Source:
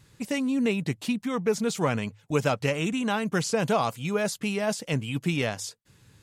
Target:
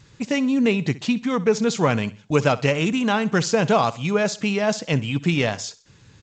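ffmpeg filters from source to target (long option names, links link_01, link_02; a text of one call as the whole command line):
ffmpeg -i in.wav -af "aecho=1:1:64|128|192:0.112|0.0438|0.0171,volume=6dB" -ar 16000 -c:a g722 out.g722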